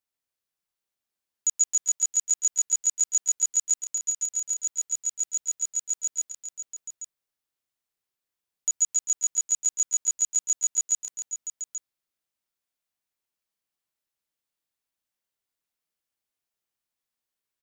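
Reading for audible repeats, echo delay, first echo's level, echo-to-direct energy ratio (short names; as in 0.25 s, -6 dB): 4, 0.128 s, -7.5 dB, -3.0 dB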